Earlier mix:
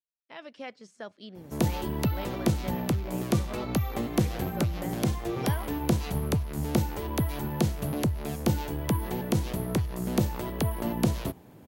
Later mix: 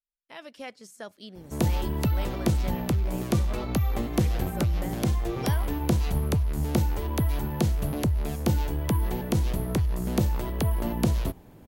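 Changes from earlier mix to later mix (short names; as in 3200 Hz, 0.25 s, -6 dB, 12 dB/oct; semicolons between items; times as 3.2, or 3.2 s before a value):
speech: remove air absorption 110 m; master: remove HPF 93 Hz 12 dB/oct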